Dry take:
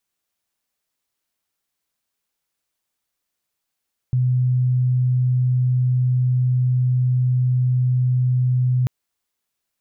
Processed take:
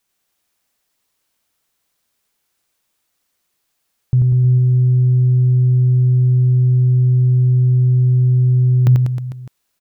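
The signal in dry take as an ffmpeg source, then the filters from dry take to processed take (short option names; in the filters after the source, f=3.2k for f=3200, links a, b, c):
-f lavfi -i "aevalsrc='0.178*sin(2*PI*126*t)':d=4.74:s=44100"
-filter_complex "[0:a]acontrast=85,asplit=2[a][b];[b]aecho=0:1:90|193.5|312.5|449.4|606.8:0.631|0.398|0.251|0.158|0.1[c];[a][c]amix=inputs=2:normalize=0"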